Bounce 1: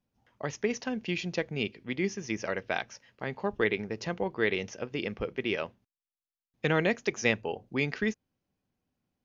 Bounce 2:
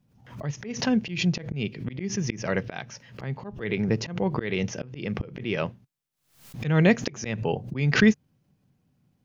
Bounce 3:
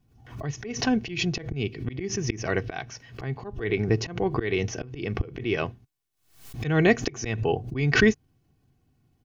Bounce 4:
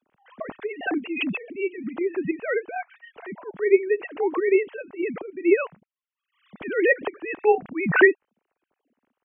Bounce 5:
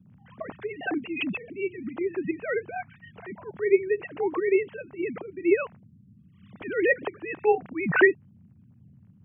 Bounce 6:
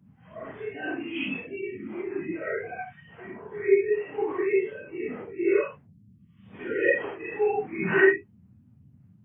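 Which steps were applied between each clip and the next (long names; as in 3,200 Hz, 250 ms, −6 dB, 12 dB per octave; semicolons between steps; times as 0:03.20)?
parametric band 140 Hz +14.5 dB 1.1 octaves; volume swells 308 ms; background raised ahead of every attack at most 110 dB per second; level +7 dB
low-shelf EQ 98 Hz +8 dB; comb filter 2.7 ms, depth 58%
three sine waves on the formant tracks; level +2.5 dB
noise in a band 84–220 Hz −51 dBFS; level −3 dB
random phases in long frames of 200 ms; level −1 dB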